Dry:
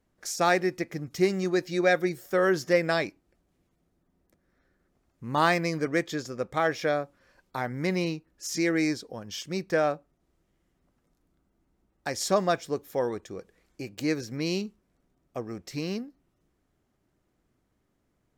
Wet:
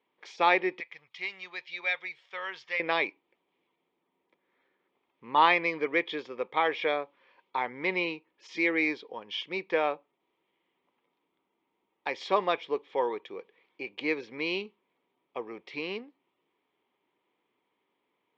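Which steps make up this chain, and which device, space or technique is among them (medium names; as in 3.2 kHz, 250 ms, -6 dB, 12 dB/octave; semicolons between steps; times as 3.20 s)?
phone earpiece (cabinet simulation 420–3400 Hz, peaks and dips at 430 Hz +4 dB, 650 Hz -7 dB, 950 Hz +9 dB, 1.5 kHz -8 dB, 2.3 kHz +8 dB, 3.3 kHz +9 dB); 0.80–2.80 s: amplifier tone stack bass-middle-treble 10-0-10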